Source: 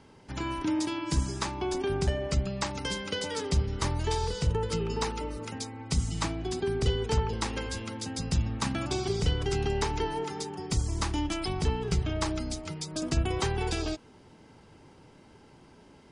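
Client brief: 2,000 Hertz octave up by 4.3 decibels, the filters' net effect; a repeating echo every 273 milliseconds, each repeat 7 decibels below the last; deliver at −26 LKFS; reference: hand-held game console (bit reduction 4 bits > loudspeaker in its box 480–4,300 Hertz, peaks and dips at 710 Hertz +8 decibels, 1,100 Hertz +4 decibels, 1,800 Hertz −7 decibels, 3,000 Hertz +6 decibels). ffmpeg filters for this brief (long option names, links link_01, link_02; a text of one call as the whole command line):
ffmpeg -i in.wav -af "equalizer=frequency=2000:width_type=o:gain=7.5,aecho=1:1:273|546|819|1092|1365:0.447|0.201|0.0905|0.0407|0.0183,acrusher=bits=3:mix=0:aa=0.000001,highpass=480,equalizer=frequency=710:width_type=q:width=4:gain=8,equalizer=frequency=1100:width_type=q:width=4:gain=4,equalizer=frequency=1800:width_type=q:width=4:gain=-7,equalizer=frequency=3000:width_type=q:width=4:gain=6,lowpass=frequency=4300:width=0.5412,lowpass=frequency=4300:width=1.3066,volume=3.5dB" out.wav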